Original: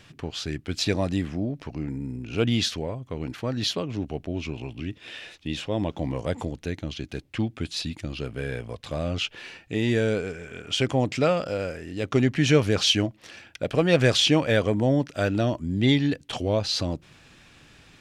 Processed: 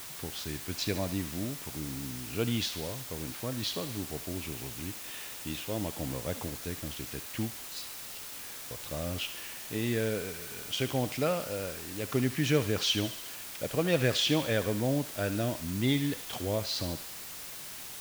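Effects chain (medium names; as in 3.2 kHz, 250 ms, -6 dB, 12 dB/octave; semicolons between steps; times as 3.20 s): 7.54–8.71 s: differentiator; word length cut 6-bit, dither triangular; thinning echo 72 ms, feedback 66%, high-pass 910 Hz, level -11 dB; trim -7.5 dB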